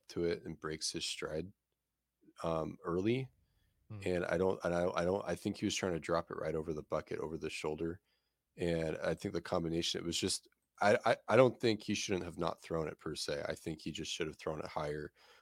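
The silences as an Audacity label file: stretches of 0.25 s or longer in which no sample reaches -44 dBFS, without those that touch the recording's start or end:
1.460000	2.400000	silence
3.250000	3.910000	silence
7.940000	8.580000	silence
10.380000	10.810000	silence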